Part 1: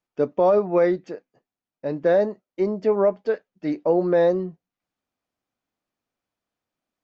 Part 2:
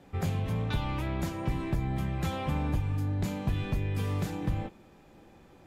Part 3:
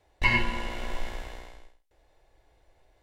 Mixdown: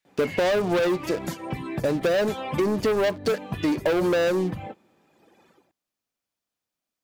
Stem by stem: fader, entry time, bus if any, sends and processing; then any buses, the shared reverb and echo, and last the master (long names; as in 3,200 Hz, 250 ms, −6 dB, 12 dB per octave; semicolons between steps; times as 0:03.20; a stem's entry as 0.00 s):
−0.5 dB, 0.00 s, no send, leveller curve on the samples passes 3; high-shelf EQ 3,000 Hz +11.5 dB
−1.5 dB, 0.05 s, no send, Bessel high-pass filter 200 Hz, order 2; automatic gain control gain up to 8.5 dB; reverb reduction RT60 1.9 s
−8.5 dB, 0.00 s, no send, inverse Chebyshev high-pass filter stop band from 710 Hz, stop band 40 dB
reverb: not used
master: downward compressor, threshold −21 dBFS, peak gain reduction 9.5 dB